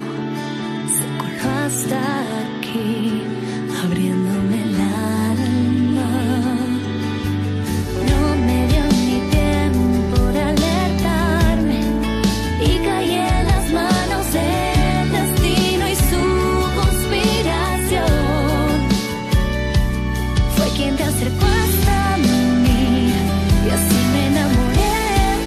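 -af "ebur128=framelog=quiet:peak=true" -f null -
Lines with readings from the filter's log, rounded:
Integrated loudness:
  I:         -17.9 LUFS
  Threshold: -27.9 LUFS
Loudness range:
  LRA:         4.4 LU
  Threshold: -37.9 LUFS
  LRA low:   -20.6 LUFS
  LRA high:  -16.2 LUFS
True peak:
  Peak:       -3.4 dBFS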